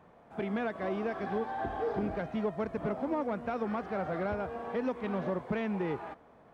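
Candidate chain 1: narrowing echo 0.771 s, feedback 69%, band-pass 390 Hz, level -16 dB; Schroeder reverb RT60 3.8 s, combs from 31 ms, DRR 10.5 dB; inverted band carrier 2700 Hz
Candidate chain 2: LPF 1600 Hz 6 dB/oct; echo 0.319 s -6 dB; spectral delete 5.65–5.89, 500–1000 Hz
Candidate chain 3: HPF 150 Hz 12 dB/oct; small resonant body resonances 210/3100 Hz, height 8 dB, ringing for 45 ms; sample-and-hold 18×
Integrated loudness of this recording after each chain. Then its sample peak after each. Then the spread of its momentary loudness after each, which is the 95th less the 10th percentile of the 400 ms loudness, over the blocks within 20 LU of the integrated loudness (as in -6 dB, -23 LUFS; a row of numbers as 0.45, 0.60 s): -31.0, -34.0, -31.5 LUFS; -20.0, -21.0, -17.5 dBFS; 3, 3, 4 LU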